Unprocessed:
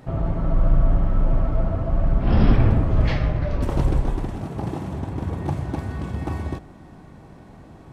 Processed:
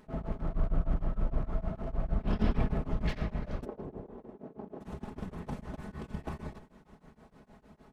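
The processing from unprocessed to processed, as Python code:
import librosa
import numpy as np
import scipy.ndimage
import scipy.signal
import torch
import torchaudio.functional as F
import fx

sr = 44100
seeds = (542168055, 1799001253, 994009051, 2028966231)

y = fx.lower_of_two(x, sr, delay_ms=4.7)
y = fx.bandpass_q(y, sr, hz=410.0, q=1.2, at=(3.64, 4.8), fade=0.02)
y = y * np.abs(np.cos(np.pi * 6.5 * np.arange(len(y)) / sr))
y = y * librosa.db_to_amplitude(-8.0)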